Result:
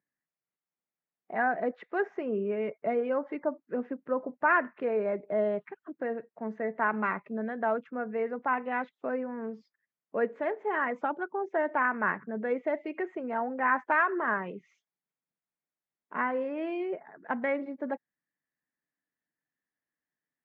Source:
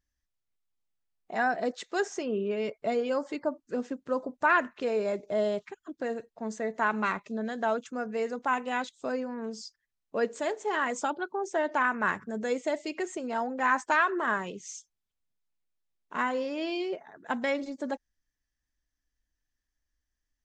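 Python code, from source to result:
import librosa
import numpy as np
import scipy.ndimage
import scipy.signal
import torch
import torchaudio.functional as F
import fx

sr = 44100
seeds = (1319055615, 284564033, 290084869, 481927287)

y = scipy.signal.sosfilt(scipy.signal.cheby1(3, 1.0, [150.0, 2100.0], 'bandpass', fs=sr, output='sos'), x)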